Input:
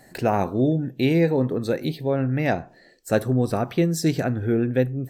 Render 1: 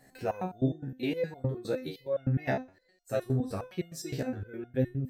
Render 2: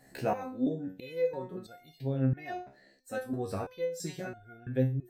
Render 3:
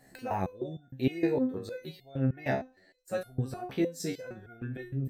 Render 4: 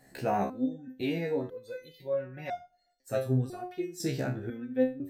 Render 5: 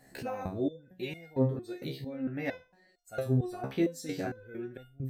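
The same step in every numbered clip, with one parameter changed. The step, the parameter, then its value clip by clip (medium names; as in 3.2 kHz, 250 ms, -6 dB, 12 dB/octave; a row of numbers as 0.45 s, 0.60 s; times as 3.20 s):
resonator arpeggio, rate: 9.7 Hz, 3 Hz, 6.5 Hz, 2 Hz, 4.4 Hz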